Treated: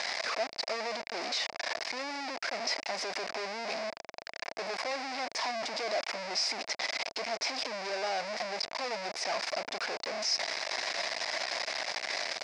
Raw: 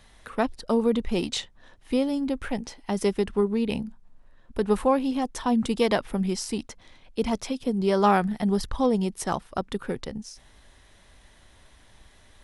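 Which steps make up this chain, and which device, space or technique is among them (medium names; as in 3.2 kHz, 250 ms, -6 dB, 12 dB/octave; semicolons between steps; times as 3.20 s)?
home computer beeper (one-bit comparator; cabinet simulation 610–5700 Hz, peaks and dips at 660 Hz +9 dB, 1.3 kHz -4 dB, 2.2 kHz +6 dB, 3.2 kHz -7 dB, 5 kHz +10 dB); trim -4.5 dB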